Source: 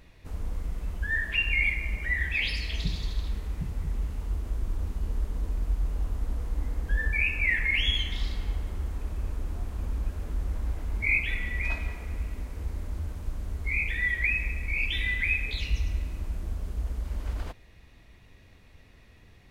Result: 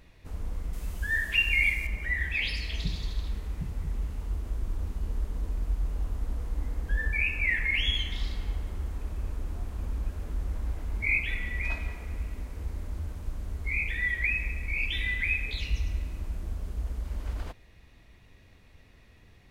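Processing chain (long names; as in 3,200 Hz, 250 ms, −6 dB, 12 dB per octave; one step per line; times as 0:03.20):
0:00.73–0:01.87: high-shelf EQ 4,100 Hz +12 dB
level −1.5 dB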